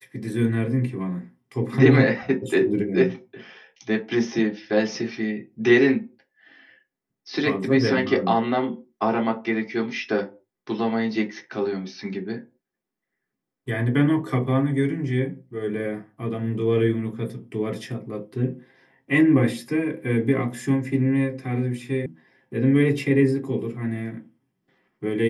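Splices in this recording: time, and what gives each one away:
0:22.06: cut off before it has died away

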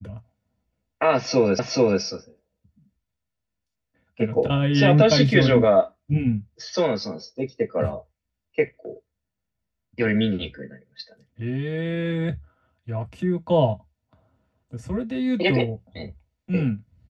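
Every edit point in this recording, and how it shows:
0:01.59: the same again, the last 0.43 s

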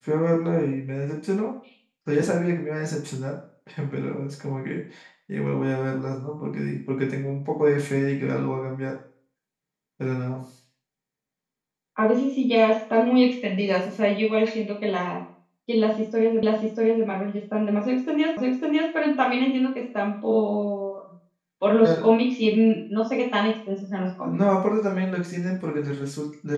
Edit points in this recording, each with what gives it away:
0:16.43: the same again, the last 0.64 s
0:18.37: the same again, the last 0.55 s

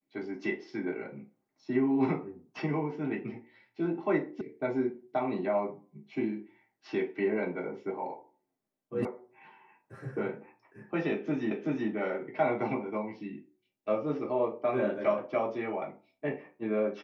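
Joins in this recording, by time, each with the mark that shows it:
0:04.41: cut off before it has died away
0:09.05: cut off before it has died away
0:11.51: the same again, the last 0.38 s

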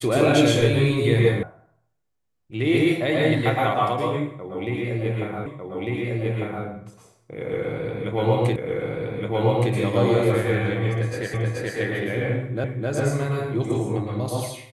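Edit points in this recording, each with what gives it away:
0:01.43: cut off before it has died away
0:05.46: the same again, the last 1.2 s
0:08.56: the same again, the last 1.17 s
0:11.34: the same again, the last 0.43 s
0:12.64: the same again, the last 0.26 s

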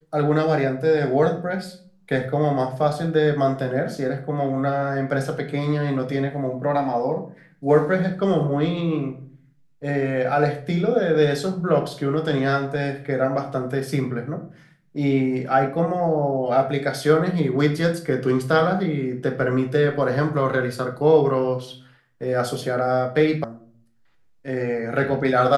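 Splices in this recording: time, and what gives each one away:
0:23.44: cut off before it has died away

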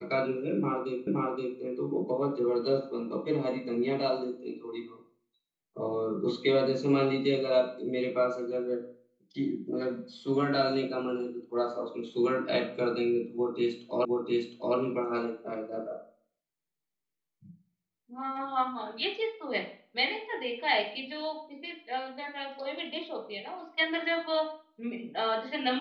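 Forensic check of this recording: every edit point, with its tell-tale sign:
0:01.07: the same again, the last 0.52 s
0:14.05: the same again, the last 0.71 s

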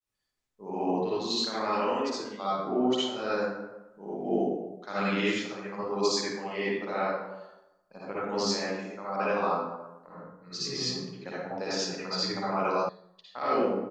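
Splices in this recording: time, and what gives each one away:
0:12.89: cut off before it has died away

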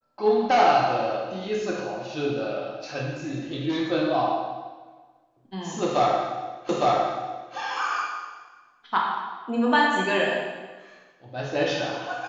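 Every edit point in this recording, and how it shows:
0:06.69: the same again, the last 0.86 s

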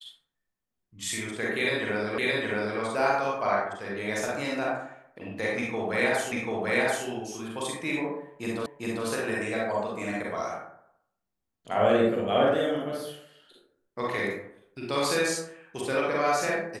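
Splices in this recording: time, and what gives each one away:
0:02.18: the same again, the last 0.62 s
0:06.32: the same again, the last 0.74 s
0:08.66: the same again, the last 0.4 s

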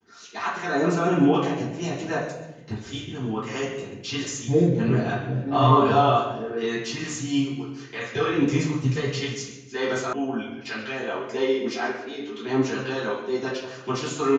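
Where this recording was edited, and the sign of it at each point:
0:10.13: cut off before it has died away

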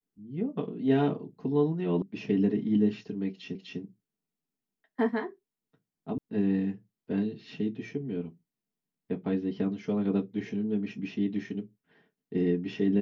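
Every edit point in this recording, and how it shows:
0:02.02: cut off before it has died away
0:03.55: the same again, the last 0.25 s
0:06.18: cut off before it has died away

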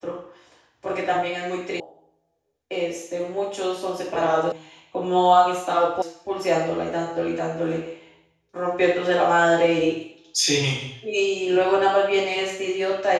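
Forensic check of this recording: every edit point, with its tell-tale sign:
0:01.80: cut off before it has died away
0:04.52: cut off before it has died away
0:06.02: cut off before it has died away

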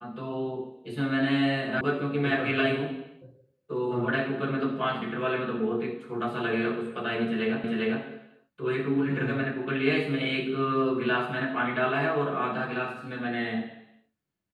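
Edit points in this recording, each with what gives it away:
0:01.81: cut off before it has died away
0:07.64: the same again, the last 0.4 s

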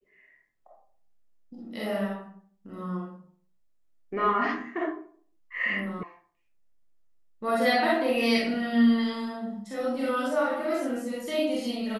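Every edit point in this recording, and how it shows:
0:06.03: cut off before it has died away

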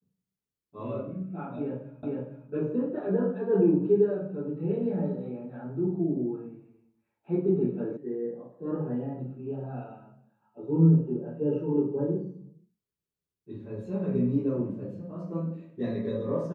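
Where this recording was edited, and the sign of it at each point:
0:02.03: the same again, the last 0.46 s
0:07.97: cut off before it has died away

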